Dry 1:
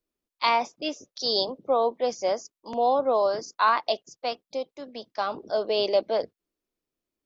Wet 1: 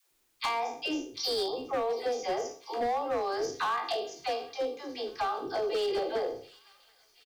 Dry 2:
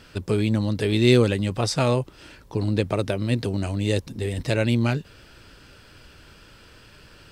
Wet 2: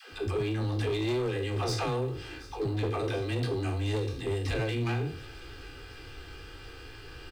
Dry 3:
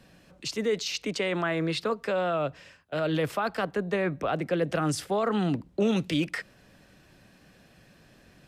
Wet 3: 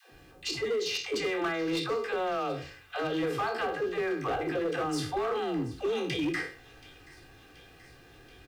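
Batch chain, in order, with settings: spectral trails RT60 0.39 s; high shelf 5800 Hz -10.5 dB; comb 2.5 ms, depth 84%; compressor 6:1, threshold -26 dBFS; requantised 12-bit, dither triangular; dispersion lows, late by 0.124 s, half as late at 360 Hz; overloaded stage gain 25.5 dB; on a send: thin delay 0.729 s, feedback 71%, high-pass 2200 Hz, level -18 dB

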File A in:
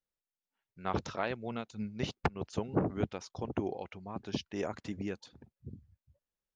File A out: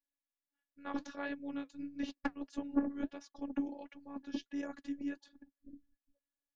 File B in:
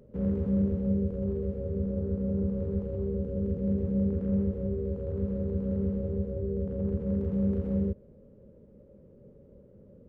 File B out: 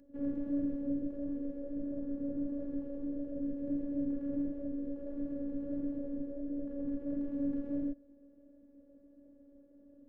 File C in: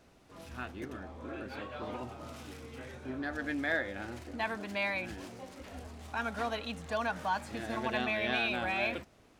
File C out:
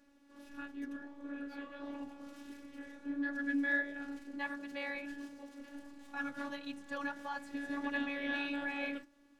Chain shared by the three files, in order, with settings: bell 180 Hz -11.5 dB 0.25 oct; robotiser 282 Hz; flange 1.5 Hz, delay 0.4 ms, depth 8.8 ms, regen -58%; small resonant body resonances 270/1700 Hz, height 10 dB; gain -2.5 dB

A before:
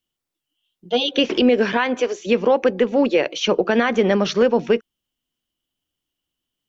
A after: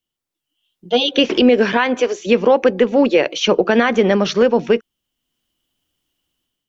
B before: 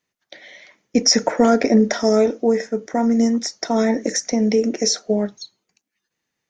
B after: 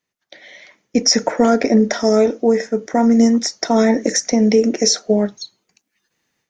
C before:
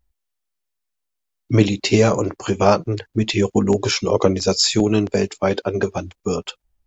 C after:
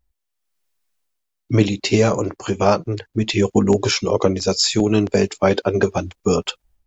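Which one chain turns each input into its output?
AGC gain up to 10 dB; gain -1.5 dB

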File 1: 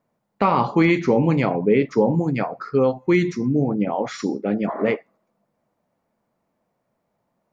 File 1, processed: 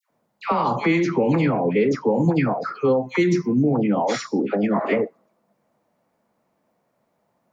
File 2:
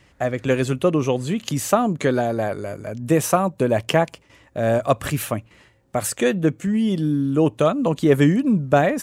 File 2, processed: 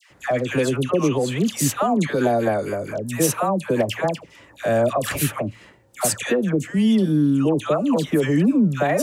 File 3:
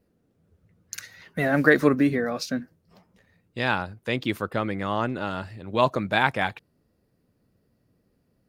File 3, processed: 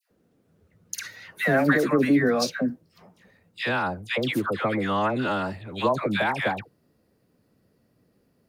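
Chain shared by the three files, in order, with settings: low shelf 86 Hz -11 dB; limiter -15 dBFS; dispersion lows, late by 0.106 s, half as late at 1100 Hz; gain +4.5 dB

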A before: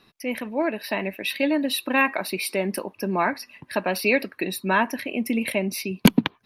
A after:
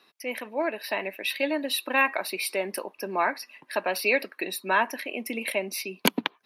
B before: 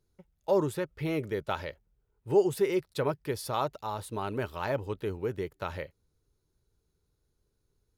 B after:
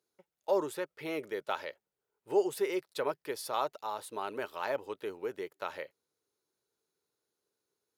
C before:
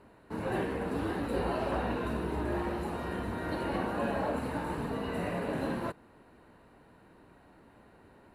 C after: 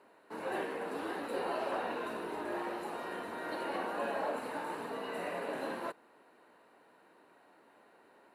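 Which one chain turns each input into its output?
HPF 400 Hz 12 dB/oct; gain -1.5 dB

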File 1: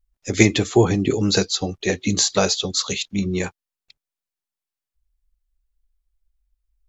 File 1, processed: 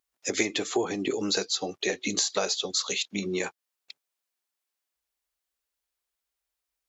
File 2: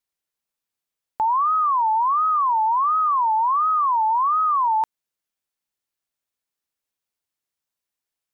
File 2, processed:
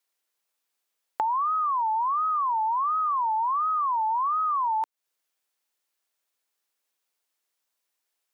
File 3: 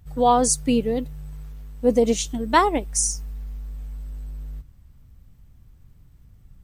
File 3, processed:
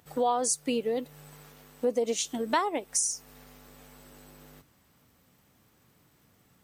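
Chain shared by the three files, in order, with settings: HPF 350 Hz 12 dB/oct; compressor 3:1, threshold -34 dBFS; gain +5.5 dB

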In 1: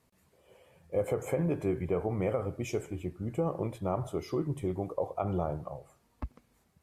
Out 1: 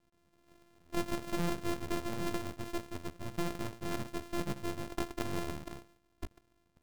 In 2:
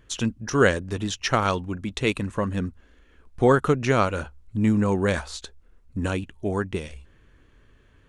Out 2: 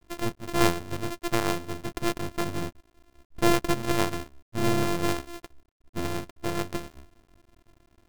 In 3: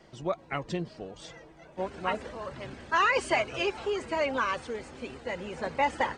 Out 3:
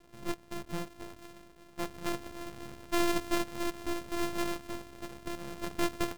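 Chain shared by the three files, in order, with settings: sample sorter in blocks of 128 samples; half-wave rectifier

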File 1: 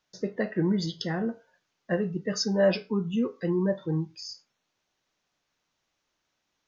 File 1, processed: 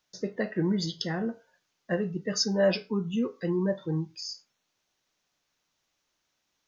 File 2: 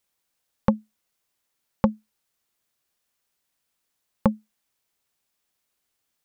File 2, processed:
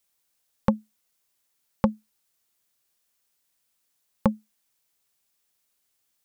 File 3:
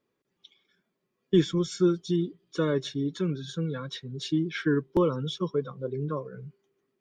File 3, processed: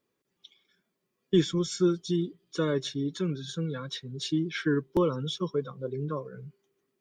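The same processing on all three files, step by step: high shelf 4200 Hz +6.5 dB; gain -1.5 dB

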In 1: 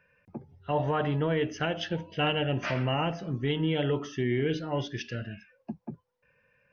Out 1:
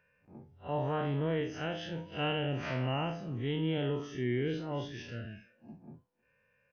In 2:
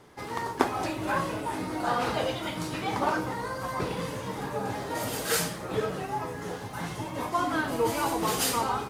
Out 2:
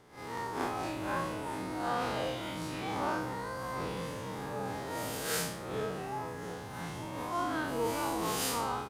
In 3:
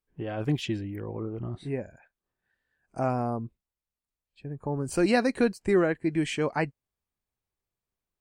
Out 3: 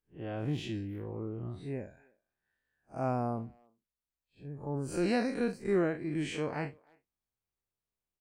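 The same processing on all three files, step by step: time blur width 99 ms; speakerphone echo 0.31 s, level -27 dB; gain -3.5 dB

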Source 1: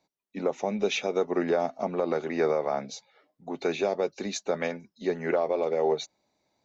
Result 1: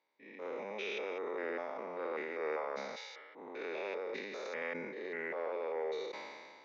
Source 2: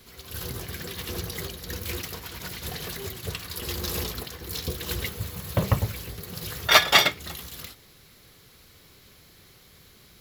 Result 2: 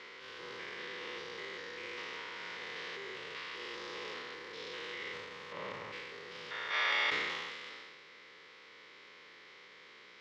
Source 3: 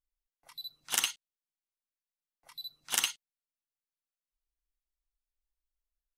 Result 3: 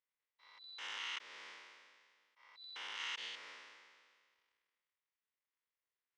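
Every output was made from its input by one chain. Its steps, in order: stepped spectrum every 0.2 s; compressor 2:1, threshold -44 dBFS; transient shaper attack -9 dB, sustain +7 dB; speaker cabinet 460–4500 Hz, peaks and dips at 480 Hz +4 dB, 700 Hz -9 dB, 1000 Hz +4 dB, 2000 Hz +7 dB, 4200 Hz -6 dB; sustainer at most 31 dB/s; gain +3 dB

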